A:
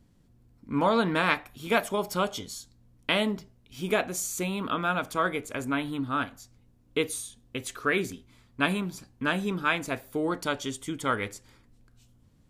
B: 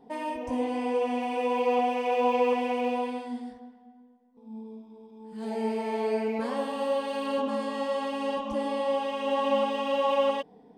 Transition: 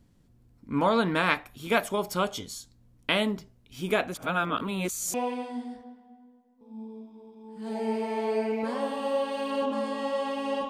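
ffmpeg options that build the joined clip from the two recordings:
-filter_complex "[0:a]apad=whole_dur=10.69,atrim=end=10.69,asplit=2[a][b];[a]atrim=end=4.142[c];[b]atrim=start=4.138:end=5.142,asetpts=PTS-STARTPTS,areverse[d];[1:a]atrim=start=2.898:end=8.45[e];[c][d]acrossfade=d=0.004:c1=hsin:c2=hsin[f];[f][e]acrossfade=d=0.004:c1=hsin:c2=hsin"

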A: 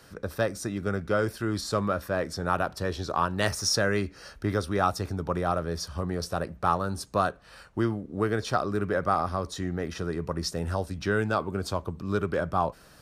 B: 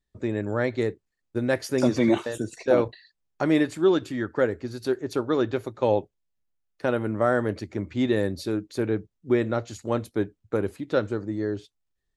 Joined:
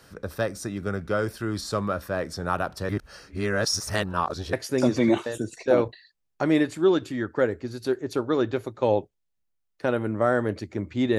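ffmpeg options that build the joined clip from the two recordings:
-filter_complex "[0:a]apad=whole_dur=11.18,atrim=end=11.18,asplit=2[a][b];[a]atrim=end=2.892[c];[b]atrim=start=2.888:end=4.532,asetpts=PTS-STARTPTS,areverse[d];[1:a]atrim=start=1.528:end=8.18[e];[c][d]acrossfade=d=0.004:c1=hsin:c2=hsin[f];[f][e]acrossfade=d=0.004:c1=hsin:c2=hsin"

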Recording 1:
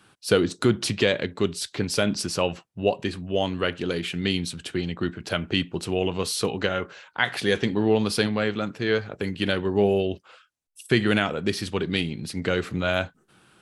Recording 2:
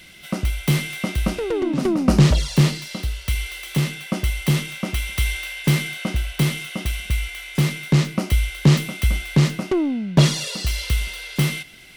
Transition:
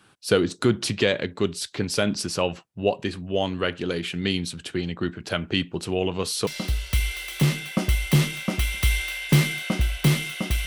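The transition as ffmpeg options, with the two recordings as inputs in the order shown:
-filter_complex "[0:a]apad=whole_dur=10.66,atrim=end=10.66,atrim=end=6.472[a];[1:a]atrim=start=2.818:end=7.01[b];[a][b]acrossfade=d=0.004:c1=hsin:c2=hsin"

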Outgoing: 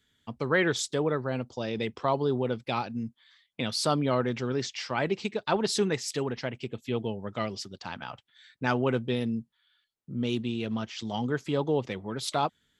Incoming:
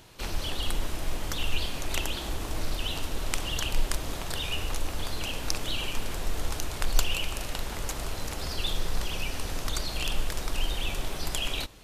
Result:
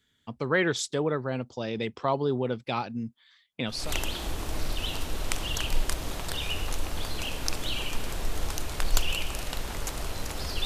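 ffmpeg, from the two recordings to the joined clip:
-filter_complex "[0:a]apad=whole_dur=10.65,atrim=end=10.65,atrim=end=3.94,asetpts=PTS-STARTPTS[a];[1:a]atrim=start=1.68:end=8.67,asetpts=PTS-STARTPTS[b];[a][b]acrossfade=d=0.28:c1=tri:c2=tri"

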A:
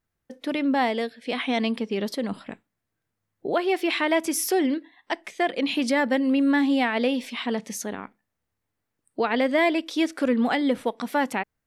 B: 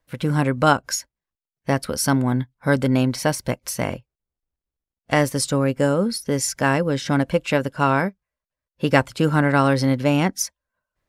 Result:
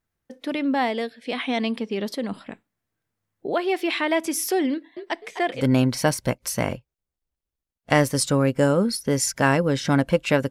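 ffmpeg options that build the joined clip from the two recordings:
-filter_complex "[0:a]asettb=1/sr,asplit=3[a][b][c];[a]atrim=end=4.714[d];[b]atrim=start=4.71:end=5.66,asetpts=PTS-STARTPTS,afade=t=in:d=0.004:c=qsin,afade=t=out:st=0.946:d=0.004:c=qsin,asplit=5[e][f][g][h][i];[f]adelay=254,afreqshift=72,volume=-9dB[j];[g]adelay=508,afreqshift=144,volume=-17dB[k];[h]adelay=762,afreqshift=216,volume=-24.9dB[l];[i]adelay=1016,afreqshift=288,volume=-32.9dB[m];[e][j][k][l][m]amix=inputs=5:normalize=0,atrim=end_sample=41895[n];[c]atrim=start=5.656[o];[d][n]acrossfade=d=0.004:c1=hsin:c2=qsin[p];[p][o]acrossfade=d=0.004:c1=qsin:c2=hsin,apad=whole_dur=10.5,atrim=end=10.5,atrim=end=5.66,asetpts=PTS-STARTPTS[q];[1:a]atrim=start=2.75:end=7.71,asetpts=PTS-STARTPTS[r];[q][r]acrossfade=d=0.12:c1=tri:c2=tri"

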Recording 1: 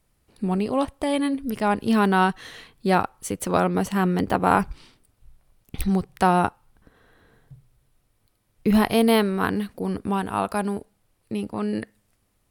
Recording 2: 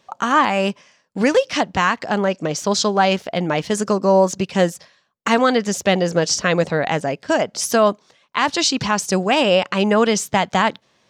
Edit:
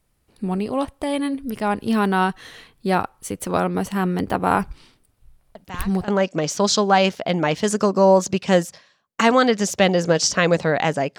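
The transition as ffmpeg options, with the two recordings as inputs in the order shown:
-filter_complex "[1:a]asplit=2[a][b];[0:a]apad=whole_dur=11.18,atrim=end=11.18,atrim=end=6.082[c];[b]atrim=start=2.148:end=7.25[d];[a]atrim=start=1.62:end=2.15,asetpts=PTS-STARTPTS,volume=-16.5dB,afade=t=in:d=0.004:c=hsin,afade=t=out:st=0.526:d=0.004:c=hsin,adelay=5550[e];[c][d]acrossfade=d=0.004:c1=hsin:c2=hsin[f];[f][e]amix=inputs=2:normalize=0"

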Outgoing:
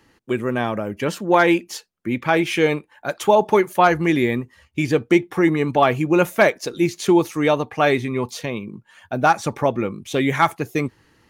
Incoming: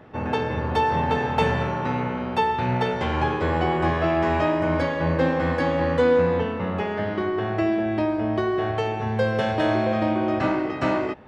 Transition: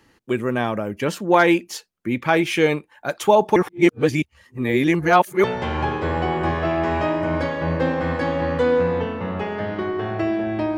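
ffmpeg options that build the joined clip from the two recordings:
-filter_complex "[0:a]apad=whole_dur=10.77,atrim=end=10.77,asplit=2[a][b];[a]atrim=end=3.562[c];[b]atrim=start=3.558:end=5.442,asetpts=PTS-STARTPTS,areverse[d];[1:a]atrim=start=2.828:end=8.16[e];[c][d]acrossfade=d=0.004:c1=hsin:c2=hsin[f];[f][e]acrossfade=d=0.004:c1=hsin:c2=hsin"

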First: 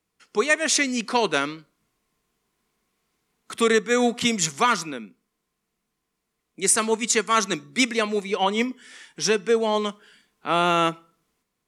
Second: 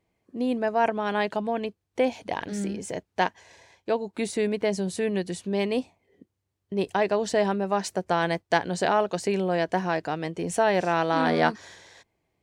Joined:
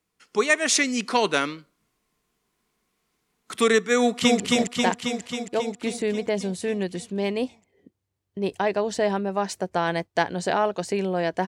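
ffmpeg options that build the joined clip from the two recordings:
-filter_complex "[0:a]apad=whole_dur=11.47,atrim=end=11.47,atrim=end=4.402[a];[1:a]atrim=start=2.748:end=9.82[b];[a][b]acrossfade=d=0.004:c1=hsin:c2=hsin,asplit=2[c][d];[d]afade=t=in:st=3.97:d=0.01,afade=t=out:st=4.4:d=0.01,aecho=0:1:270|540|810|1080|1350|1620|1890|2160|2430|2700|2970|3240:0.841395|0.588977|0.412284|0.288599|0.202019|0.141413|0.0989893|0.0692925|0.0485048|0.0339533|0.0237673|0.0166371[e];[c][e]amix=inputs=2:normalize=0"

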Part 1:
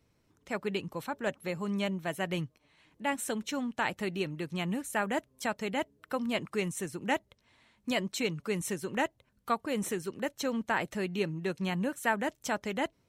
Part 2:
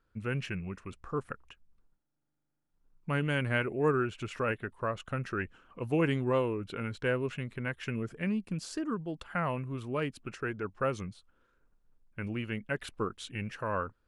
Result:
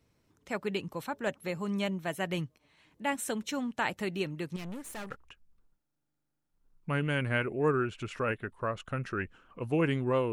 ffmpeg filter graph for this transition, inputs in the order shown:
-filter_complex "[0:a]asettb=1/sr,asplit=3[a][b][c];[a]atrim=end=4.564[d];[b]atrim=start=4.56:end=5.16,asetpts=PTS-STARTPTS,afade=t=in:d=0.004:c=qsin,afade=t=out:st=0.596:d=0.004:c=qsin,aeval=exprs='(tanh(79.4*val(0)+0.65)-tanh(0.65))/79.4':c=same[e];[c]atrim=start=5.156[f];[d][e]acrossfade=d=0.004:c1=hsin:c2=qsin[g];[g][f]acrossfade=d=0.004:c1=qsin:c2=hsin,apad=whole_dur=10.32,atrim=end=10.32,atrim=end=5.16,asetpts=PTS-STARTPTS[h];[1:a]atrim=start=1.24:end=6.52,asetpts=PTS-STARTPTS[i];[h][i]acrossfade=d=0.12:c1=tri:c2=tri"

